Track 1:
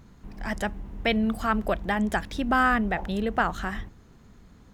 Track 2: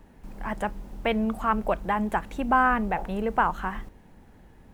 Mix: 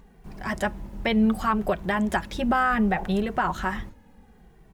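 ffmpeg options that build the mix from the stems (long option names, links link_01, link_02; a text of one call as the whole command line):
ffmpeg -i stem1.wav -i stem2.wav -filter_complex "[0:a]volume=1dB[link_01];[1:a]asplit=2[link_02][link_03];[link_03]adelay=2.1,afreqshift=-0.69[link_04];[link_02][link_04]amix=inputs=2:normalize=1,adelay=5.8,volume=1.5dB,asplit=2[link_05][link_06];[link_06]apad=whole_len=208862[link_07];[link_01][link_07]sidechaingate=range=-33dB:threshold=-45dB:ratio=16:detection=peak[link_08];[link_08][link_05]amix=inputs=2:normalize=0,alimiter=limit=-13dB:level=0:latency=1:release=124" out.wav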